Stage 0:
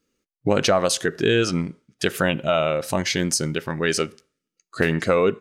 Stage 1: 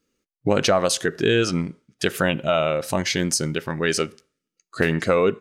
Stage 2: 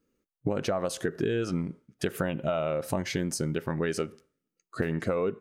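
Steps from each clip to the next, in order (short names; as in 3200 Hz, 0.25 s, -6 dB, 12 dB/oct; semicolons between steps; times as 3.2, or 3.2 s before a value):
nothing audible
bell 4700 Hz -10.5 dB 2.8 oct; compressor, threshold -25 dBFS, peak gain reduction 10.5 dB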